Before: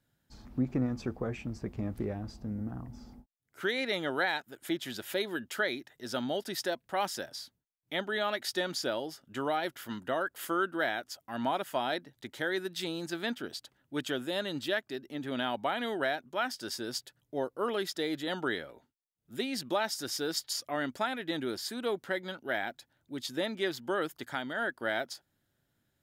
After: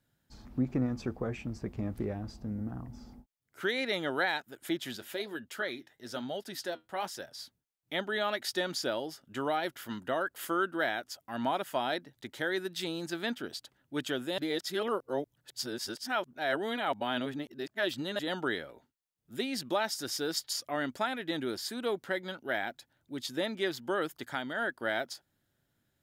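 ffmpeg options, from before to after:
ffmpeg -i in.wav -filter_complex "[0:a]asplit=3[link_01][link_02][link_03];[link_01]afade=type=out:start_time=4.95:duration=0.02[link_04];[link_02]flanger=delay=1.4:depth=9.7:regen=-68:speed=1.1:shape=sinusoidal,afade=type=in:start_time=4.95:duration=0.02,afade=type=out:start_time=7.38:duration=0.02[link_05];[link_03]afade=type=in:start_time=7.38:duration=0.02[link_06];[link_04][link_05][link_06]amix=inputs=3:normalize=0,asplit=3[link_07][link_08][link_09];[link_07]atrim=end=14.382[link_10];[link_08]atrim=start=14.378:end=18.192,asetpts=PTS-STARTPTS,areverse[link_11];[link_09]atrim=start=18.188[link_12];[link_10][link_11]acrossfade=duration=0.004:curve1=hsin:curve2=hsin[link_13];[link_13][link_12]acrossfade=duration=0.004:curve1=hsin:curve2=hsin" out.wav

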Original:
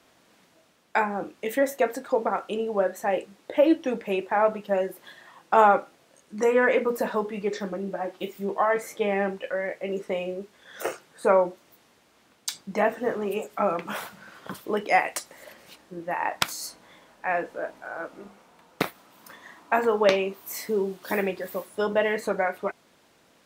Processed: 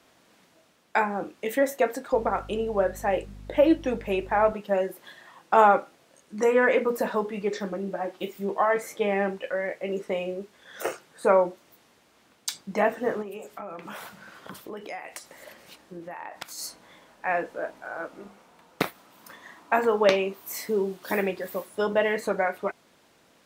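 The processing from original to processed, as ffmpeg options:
ffmpeg -i in.wav -filter_complex "[0:a]asettb=1/sr,asplit=3[link_01][link_02][link_03];[link_01]atrim=end=2.134[link_04];[link_02]atrim=start=2.13:end=4.53,asetpts=PTS-STARTPTS,afade=type=in:duration=0.004:curve=qsin,afade=type=out:start_time=2.396:duration=0.004:curve=qsin,aeval=exprs='val(0)+0.00794*(sin(2*PI*50*n/s)+sin(2*PI*2*50*n/s)/2+sin(2*PI*3*50*n/s)/3+sin(2*PI*4*50*n/s)/4+sin(2*PI*5*50*n/s)/5)':channel_layout=same[link_05];[link_03]atrim=start=4.526[link_06];[link_04][link_05]acrossfade=duration=0.004:curve1=hsin:curve2=qsin[link_07];[link_07][link_06]acrossfade=duration=0.004:curve1=qsin:curve2=hsin,asplit=3[link_08][link_09][link_10];[link_08]afade=type=out:start_time=13.21:duration=0.02[link_11];[link_09]acompressor=threshold=-36dB:ratio=4:attack=3.2:release=140:knee=1:detection=peak,afade=type=in:start_time=13.21:duration=0.02,afade=type=out:start_time=16.57:duration=0.02[link_12];[link_10]afade=type=in:start_time=16.57:duration=0.02[link_13];[link_11][link_12][link_13]amix=inputs=3:normalize=0" out.wav

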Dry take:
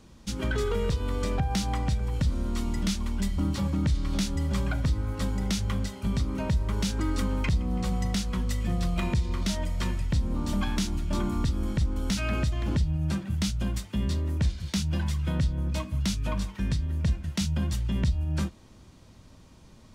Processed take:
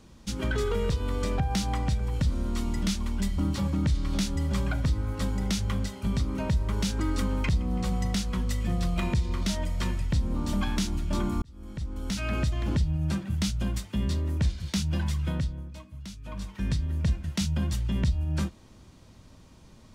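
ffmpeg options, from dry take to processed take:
ffmpeg -i in.wav -filter_complex "[0:a]asplit=4[link_01][link_02][link_03][link_04];[link_01]atrim=end=11.42,asetpts=PTS-STARTPTS,afade=type=out:start_time=11.416:duration=0.004:curve=hsin[link_05];[link_02]atrim=start=11.42:end=15.7,asetpts=PTS-STARTPTS,afade=type=in:duration=1.02,afade=type=out:start_time=3.81:duration=0.47:silence=0.211349[link_06];[link_03]atrim=start=15.7:end=16.23,asetpts=PTS-STARTPTS,volume=-13.5dB[link_07];[link_04]atrim=start=16.23,asetpts=PTS-STARTPTS,afade=type=in:duration=0.47:silence=0.211349[link_08];[link_05][link_06][link_07][link_08]concat=n=4:v=0:a=1" out.wav

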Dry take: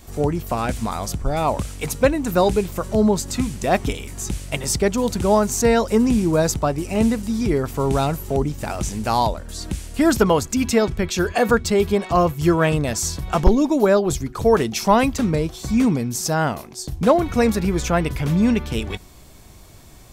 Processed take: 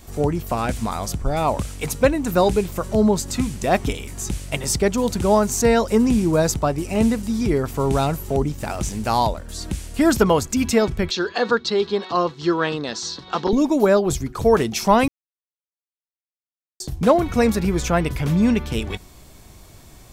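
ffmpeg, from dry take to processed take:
ffmpeg -i in.wav -filter_complex "[0:a]asettb=1/sr,asplit=3[link_01][link_02][link_03];[link_01]atrim=end=8.524[link_04];[link_02]atrim=start=8.52:end=9.52,asetpts=PTS-STARTPTS,afade=type=in:duration=0.004:curve=qsin,afade=type=out:start_time=0.996:duration=0.004:curve=qsin,aeval=exprs='sgn(val(0))*max(abs(val(0))-0.00266,0)':channel_layout=same[link_05];[link_03]atrim=start=9.516[link_06];[link_04][link_05]acrossfade=duration=0.004:curve1=hsin:curve2=qsin[link_07];[link_07][link_06]acrossfade=duration=0.004:curve1=qsin:curve2=hsin,asettb=1/sr,asplit=3[link_08][link_09][link_10];[link_08]atrim=end=11.114[link_11];[link_09]atrim=start=11.11:end=13.53,asetpts=PTS-STARTPTS,afade=type=in:duration=0.004:curve=qsin,afade=type=out:start_time=2.416:duration=0.004:curve=qsin,highpass=290,equalizer=frequency=640:width_type=q:width=4:gain=-9,equalizer=frequency=2300:width_type=q:width=4:gain=-8,equalizer=frequency=4000:width_type=q:width=4:gain=10,lowpass=frequency=5400:width=0.5412,lowpass=frequency=5400:width=1.3066[link_12];[link_10]atrim=start=13.526[link_13];[link_11][link_12]acrossfade=duration=0.004:curve1=hsin:curve2=qsin[link_14];[link_14][link_13]acrossfade=duration=0.004:curve1=qsin:curve2=hsin,asplit=3[link_15][link_16][link_17];[link_15]atrim=end=15.08,asetpts=PTS-STARTPTS,afade=type=out:start_time=15.076:duration=0.004:curve=hsin[link_18];[link_16]atrim=start=15.08:end=16.8,asetpts=PTS-STARTPTS,volume=0[link_19];[link_17]atrim=start=16.8,asetpts=PTS-STARTPTS,afade=type=in:duration=0.004:curve=hsin[link_20];[link_18][link_19][link_20]concat=n=3:v=0:a=1" out.wav

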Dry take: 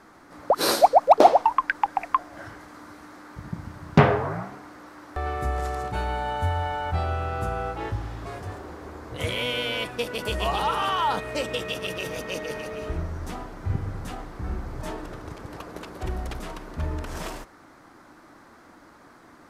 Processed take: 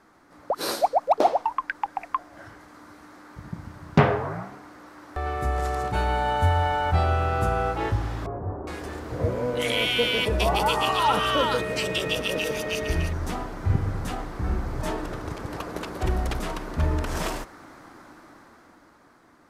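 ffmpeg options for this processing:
ffmpeg -i in.wav -filter_complex "[0:a]asettb=1/sr,asplit=3[link_01][link_02][link_03];[link_01]atrim=end=8.264[link_04];[link_02]atrim=start=8.26:end=13.13,asetpts=PTS-STARTPTS,afade=type=in:duration=0.004:curve=qsin,afade=type=out:start_time=4.866:duration=0.004:curve=qsin,acrossover=split=1100[link_05][link_06];[link_06]adelay=410[link_07];[link_05][link_07]amix=inputs=2:normalize=0,atrim=end_sample=214767[link_08];[link_03]atrim=start=13.126[link_09];[link_04][link_08]acrossfade=duration=0.004:curve1=hsin:curve2=qsin[link_10];[link_10][link_09]acrossfade=duration=0.004:curve1=qsin:curve2=hsin,dynaudnorm=framelen=170:gausssize=17:maxgain=11.5dB,volume=-6dB" out.wav

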